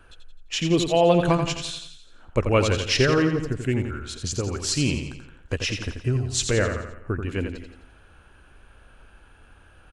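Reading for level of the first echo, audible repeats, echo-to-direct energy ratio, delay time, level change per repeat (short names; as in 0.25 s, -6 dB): -7.0 dB, 5, -6.0 dB, 86 ms, -6.0 dB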